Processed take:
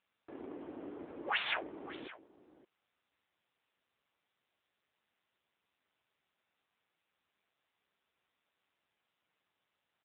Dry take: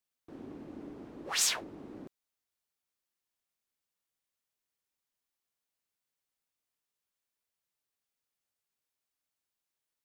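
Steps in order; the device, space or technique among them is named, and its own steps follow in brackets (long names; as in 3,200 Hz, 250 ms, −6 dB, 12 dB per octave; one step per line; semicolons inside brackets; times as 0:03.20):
satellite phone (band-pass filter 390–3,100 Hz; single-tap delay 569 ms −16 dB; level +6 dB; AMR narrowband 6.7 kbit/s 8,000 Hz)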